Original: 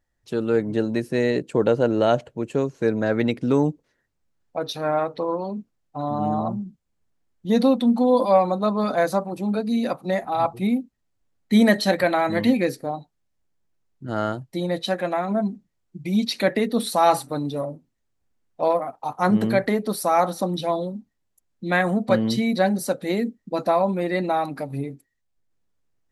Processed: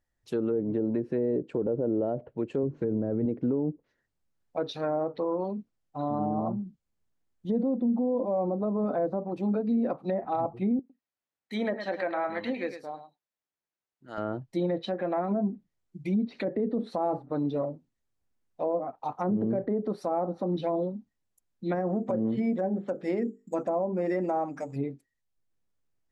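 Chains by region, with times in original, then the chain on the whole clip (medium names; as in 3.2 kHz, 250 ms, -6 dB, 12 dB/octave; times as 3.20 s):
2.63–3.26 s: bass shelf 160 Hz +11 dB + hum notches 50/100/150/200/250/300/350 Hz
10.79–14.18 s: high-pass 1 kHz 6 dB/octave + treble shelf 4.3 kHz -8.5 dB + delay 106 ms -10 dB
21.75–24.76 s: bass shelf 240 Hz -4 dB + hum notches 50/100/150/200/250/300/350/400/450 Hz + careless resampling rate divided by 6×, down filtered, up hold
whole clip: low-pass that closes with the level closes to 610 Hz, closed at -17.5 dBFS; dynamic bell 370 Hz, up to +6 dB, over -33 dBFS, Q 0.95; peak limiter -14.5 dBFS; trim -5.5 dB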